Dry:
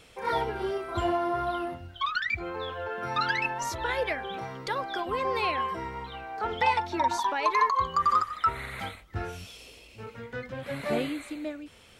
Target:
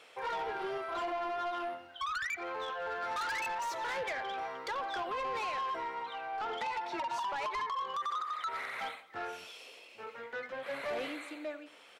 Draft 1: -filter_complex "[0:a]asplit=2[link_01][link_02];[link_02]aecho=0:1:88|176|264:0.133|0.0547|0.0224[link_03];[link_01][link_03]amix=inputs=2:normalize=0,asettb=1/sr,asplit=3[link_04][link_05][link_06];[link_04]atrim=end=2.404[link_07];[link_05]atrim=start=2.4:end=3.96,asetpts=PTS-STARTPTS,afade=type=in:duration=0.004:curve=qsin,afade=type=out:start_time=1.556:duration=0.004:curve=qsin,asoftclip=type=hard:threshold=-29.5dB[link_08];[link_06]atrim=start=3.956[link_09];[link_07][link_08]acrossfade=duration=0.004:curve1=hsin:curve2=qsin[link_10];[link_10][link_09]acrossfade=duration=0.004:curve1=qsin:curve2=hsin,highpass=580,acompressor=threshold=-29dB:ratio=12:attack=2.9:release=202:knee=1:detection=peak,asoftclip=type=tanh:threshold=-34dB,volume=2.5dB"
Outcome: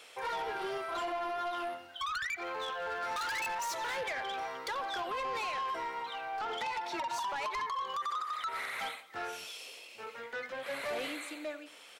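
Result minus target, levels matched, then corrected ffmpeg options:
8,000 Hz band +5.5 dB
-filter_complex "[0:a]asplit=2[link_01][link_02];[link_02]aecho=0:1:88|176|264:0.133|0.0547|0.0224[link_03];[link_01][link_03]amix=inputs=2:normalize=0,asettb=1/sr,asplit=3[link_04][link_05][link_06];[link_04]atrim=end=2.404[link_07];[link_05]atrim=start=2.4:end=3.96,asetpts=PTS-STARTPTS,afade=type=in:duration=0.004:curve=qsin,afade=type=out:start_time=1.556:duration=0.004:curve=qsin,asoftclip=type=hard:threshold=-29.5dB[link_08];[link_06]atrim=start=3.956[link_09];[link_07][link_08]acrossfade=duration=0.004:curve1=hsin:curve2=qsin[link_10];[link_10][link_09]acrossfade=duration=0.004:curve1=qsin:curve2=hsin,highpass=580,highshelf=frequency=4000:gain=-11.5,acompressor=threshold=-29dB:ratio=12:attack=2.9:release=202:knee=1:detection=peak,asoftclip=type=tanh:threshold=-34dB,volume=2.5dB"

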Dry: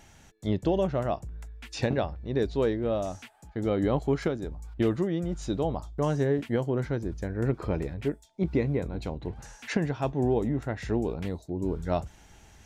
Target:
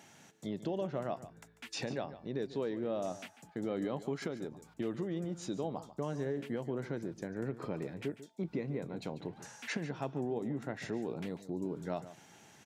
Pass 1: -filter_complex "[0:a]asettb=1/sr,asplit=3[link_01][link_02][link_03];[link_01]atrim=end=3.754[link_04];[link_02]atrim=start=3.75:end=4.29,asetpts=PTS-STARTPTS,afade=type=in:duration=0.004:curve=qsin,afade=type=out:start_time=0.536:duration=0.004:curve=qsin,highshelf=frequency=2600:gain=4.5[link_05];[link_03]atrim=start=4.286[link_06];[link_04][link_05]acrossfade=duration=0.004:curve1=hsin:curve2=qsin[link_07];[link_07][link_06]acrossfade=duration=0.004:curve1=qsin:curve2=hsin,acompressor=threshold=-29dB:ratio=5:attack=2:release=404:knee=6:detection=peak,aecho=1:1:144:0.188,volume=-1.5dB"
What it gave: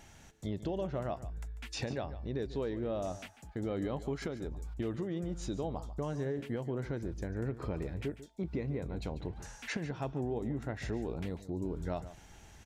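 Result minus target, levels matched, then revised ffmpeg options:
125 Hz band +3.5 dB
-filter_complex "[0:a]asettb=1/sr,asplit=3[link_01][link_02][link_03];[link_01]atrim=end=3.754[link_04];[link_02]atrim=start=3.75:end=4.29,asetpts=PTS-STARTPTS,afade=type=in:duration=0.004:curve=qsin,afade=type=out:start_time=0.536:duration=0.004:curve=qsin,highshelf=frequency=2600:gain=4.5[link_05];[link_03]atrim=start=4.286[link_06];[link_04][link_05]acrossfade=duration=0.004:curve1=hsin:curve2=qsin[link_07];[link_07][link_06]acrossfade=duration=0.004:curve1=qsin:curve2=hsin,acompressor=threshold=-29dB:ratio=5:attack=2:release=404:knee=6:detection=peak,highpass=frequency=140:width=0.5412,highpass=frequency=140:width=1.3066,aecho=1:1:144:0.188,volume=-1.5dB"

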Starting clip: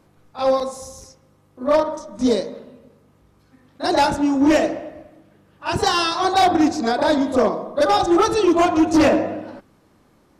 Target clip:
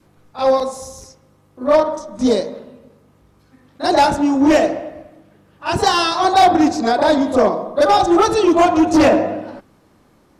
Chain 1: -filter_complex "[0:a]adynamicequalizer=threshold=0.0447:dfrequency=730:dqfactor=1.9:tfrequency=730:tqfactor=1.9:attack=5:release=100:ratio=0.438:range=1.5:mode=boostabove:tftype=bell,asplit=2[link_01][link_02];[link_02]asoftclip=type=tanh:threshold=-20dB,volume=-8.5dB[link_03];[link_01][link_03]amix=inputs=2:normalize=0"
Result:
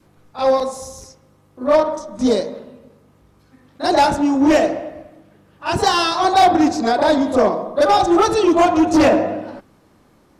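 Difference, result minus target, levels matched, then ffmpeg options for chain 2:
soft clipping: distortion +9 dB
-filter_complex "[0:a]adynamicequalizer=threshold=0.0447:dfrequency=730:dqfactor=1.9:tfrequency=730:tqfactor=1.9:attack=5:release=100:ratio=0.438:range=1.5:mode=boostabove:tftype=bell,asplit=2[link_01][link_02];[link_02]asoftclip=type=tanh:threshold=-11.5dB,volume=-8.5dB[link_03];[link_01][link_03]amix=inputs=2:normalize=0"

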